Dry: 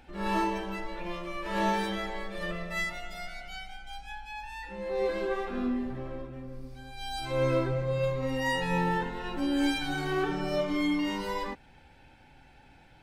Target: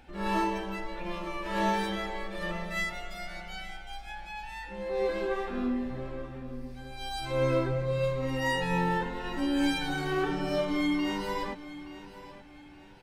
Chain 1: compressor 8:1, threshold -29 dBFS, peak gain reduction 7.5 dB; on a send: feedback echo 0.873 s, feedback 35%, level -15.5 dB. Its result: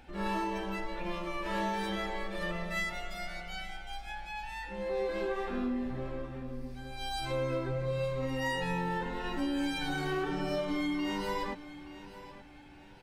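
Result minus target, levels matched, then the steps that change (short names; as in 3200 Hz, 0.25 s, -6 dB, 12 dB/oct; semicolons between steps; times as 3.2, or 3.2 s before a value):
compressor: peak gain reduction +7.5 dB
remove: compressor 8:1, threshold -29 dBFS, peak gain reduction 7.5 dB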